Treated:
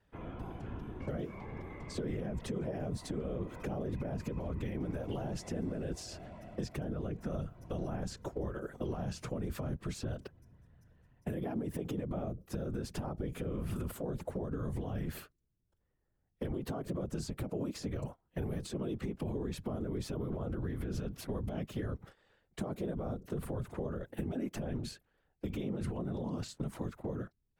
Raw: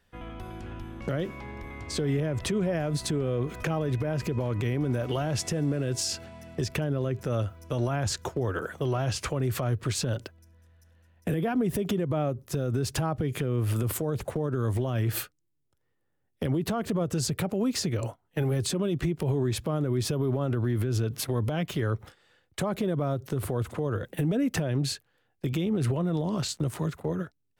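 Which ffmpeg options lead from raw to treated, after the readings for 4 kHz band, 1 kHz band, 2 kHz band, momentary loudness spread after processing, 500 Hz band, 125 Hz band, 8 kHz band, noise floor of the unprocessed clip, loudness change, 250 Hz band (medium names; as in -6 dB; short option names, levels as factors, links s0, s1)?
-14.5 dB, -10.5 dB, -12.5 dB, 6 LU, -9.5 dB, -11.0 dB, -15.5 dB, -74 dBFS, -10.0 dB, -8.5 dB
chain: -filter_complex "[0:a]afftfilt=real='hypot(re,im)*cos(2*PI*random(0))':imag='hypot(re,im)*sin(2*PI*random(1))':win_size=512:overlap=0.75,highshelf=f=2400:g=-10,acrossover=split=710|4800[s0][s1][s2];[s0]acompressor=threshold=0.0126:ratio=4[s3];[s1]acompressor=threshold=0.002:ratio=4[s4];[s2]acompressor=threshold=0.00251:ratio=4[s5];[s3][s4][s5]amix=inputs=3:normalize=0,volume=1.41"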